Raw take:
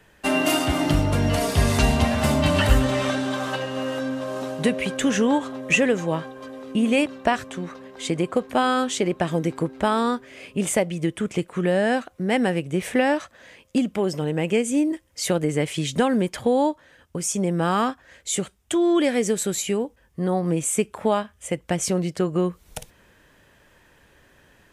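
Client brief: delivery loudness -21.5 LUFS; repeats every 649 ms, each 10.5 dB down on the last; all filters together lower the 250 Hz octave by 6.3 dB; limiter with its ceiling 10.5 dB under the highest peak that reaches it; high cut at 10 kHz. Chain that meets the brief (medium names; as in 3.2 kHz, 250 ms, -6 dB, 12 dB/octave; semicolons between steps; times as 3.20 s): low-pass 10 kHz; peaking EQ 250 Hz -8.5 dB; peak limiter -16 dBFS; feedback delay 649 ms, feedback 30%, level -10.5 dB; trim +5.5 dB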